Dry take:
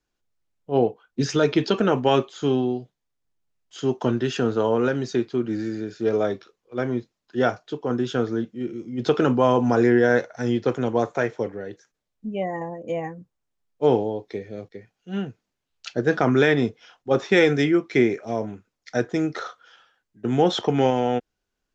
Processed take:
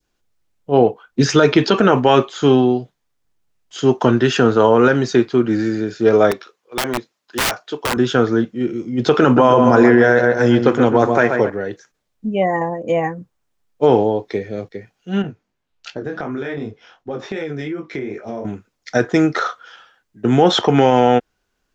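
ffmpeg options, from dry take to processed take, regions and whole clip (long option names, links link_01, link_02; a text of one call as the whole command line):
ffmpeg -i in.wav -filter_complex "[0:a]asettb=1/sr,asplit=3[link_01][link_02][link_03];[link_01]atrim=end=6.314[link_04];[link_02]atrim=start=6.31:end=7.97,asetpts=PTS-STARTPTS,afade=type=in:duration=0.004:curve=qsin,afade=type=out:start_time=1.656:duration=0.004:curve=qsin,highpass=frequency=500:poles=1,aeval=exprs='(mod(14.1*val(0)+1,2)-1)/14.1':channel_layout=same[link_05];[link_03]atrim=start=7.966[link_06];[link_04][link_05]acrossfade=duration=0.004:curve1=hsin:curve2=qsin[link_07];[link_07][link_06]acrossfade=duration=0.004:curve1=qsin:curve2=hsin,asettb=1/sr,asplit=3[link_08][link_09][link_10];[link_08]atrim=end=9.234[link_11];[link_09]atrim=start=9.23:end=11.5,asetpts=PTS-STARTPTS,afade=type=in:duration=0.004:curve=qsin,afade=type=out:start_time=2.266:duration=0.004:curve=qsin,bandreject=frequency=5800:width=29,asplit=2[link_12][link_13];[link_13]adelay=132,lowpass=frequency=2100:poles=1,volume=-7dB,asplit=2[link_14][link_15];[link_15]adelay=132,lowpass=frequency=2100:poles=1,volume=0.47,asplit=2[link_16][link_17];[link_17]adelay=132,lowpass=frequency=2100:poles=1,volume=0.47,asplit=2[link_18][link_19];[link_19]adelay=132,lowpass=frequency=2100:poles=1,volume=0.47,asplit=2[link_20][link_21];[link_21]adelay=132,lowpass=frequency=2100:poles=1,volume=0.47,asplit=2[link_22][link_23];[link_23]adelay=132,lowpass=frequency=2100:poles=1,volume=0.47[link_24];[link_12][link_14][link_16][link_18][link_20][link_22][link_24]amix=inputs=7:normalize=0,atrim=end_sample=100107[link_25];[link_10]atrim=start=11.496[link_26];[link_11][link_25]acrossfade=duration=0.004:curve1=hsin:curve2=qsin[link_27];[link_27][link_26]acrossfade=duration=0.004:curve1=qsin:curve2=hsin,asettb=1/sr,asplit=3[link_28][link_29][link_30];[link_28]atrim=end=15.224[link_31];[link_29]atrim=start=15.22:end=18.45,asetpts=PTS-STARTPTS,afade=type=in:duration=0.004:curve=qsin,afade=type=out:start_time=3.226:duration=0.004:curve=qsin,highshelf=frequency=3500:gain=-8.5,flanger=delay=18.5:depth=4.2:speed=2.7,acompressor=threshold=-30dB:ratio=12:attack=3.2:release=140:knee=1:detection=peak[link_32];[link_30]atrim=start=18.446[link_33];[link_31][link_32]acrossfade=duration=0.004:curve1=hsin:curve2=qsin[link_34];[link_34][link_33]acrossfade=duration=0.004:curve1=qsin:curve2=hsin,adynamicequalizer=threshold=0.0178:dfrequency=1300:dqfactor=0.8:tfrequency=1300:tqfactor=0.8:attack=5:release=100:ratio=0.375:range=2.5:mode=boostabove:tftype=bell,alimiter=level_in=9.5dB:limit=-1dB:release=50:level=0:latency=1,volume=-1dB" out.wav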